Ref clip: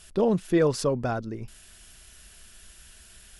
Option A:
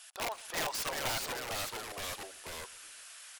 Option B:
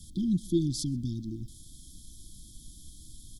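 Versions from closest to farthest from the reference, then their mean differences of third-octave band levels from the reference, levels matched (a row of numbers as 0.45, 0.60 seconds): B, A; 10.5, 18.0 decibels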